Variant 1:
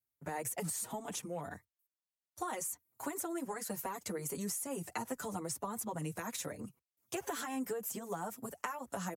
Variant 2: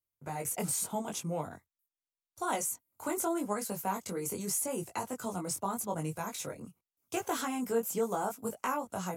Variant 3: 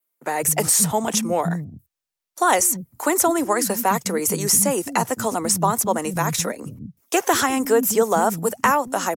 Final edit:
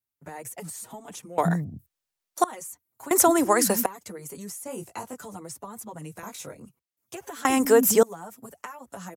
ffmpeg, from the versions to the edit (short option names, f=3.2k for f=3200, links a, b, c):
-filter_complex "[2:a]asplit=3[a][b][c];[1:a]asplit=2[d][e];[0:a]asplit=6[f][g][h][i][j][k];[f]atrim=end=1.382[l];[a]atrim=start=1.378:end=2.442[m];[g]atrim=start=2.438:end=3.112[n];[b]atrim=start=3.108:end=3.862[o];[h]atrim=start=3.858:end=4.662[p];[d]atrim=start=4.658:end=5.192[q];[i]atrim=start=5.188:end=6.232[r];[e]atrim=start=6.228:end=6.662[s];[j]atrim=start=6.658:end=7.452[t];[c]atrim=start=7.448:end=8.032[u];[k]atrim=start=8.028[v];[l][m]acrossfade=d=0.004:c1=hsin:c2=hsin[w];[w][n]acrossfade=d=0.004:c1=hsin:c2=hsin[x];[x][o]acrossfade=d=0.004:c1=hsin:c2=hsin[y];[y][p]acrossfade=d=0.004:c1=hsin:c2=hsin[z];[z][q]acrossfade=d=0.004:c1=hsin:c2=hsin[aa];[aa][r]acrossfade=d=0.004:c1=hsin:c2=hsin[ab];[ab][s]acrossfade=d=0.004:c1=hsin:c2=hsin[ac];[ac][t]acrossfade=d=0.004:c1=hsin:c2=hsin[ad];[ad][u]acrossfade=d=0.004:c1=hsin:c2=hsin[ae];[ae][v]acrossfade=d=0.004:c1=hsin:c2=hsin"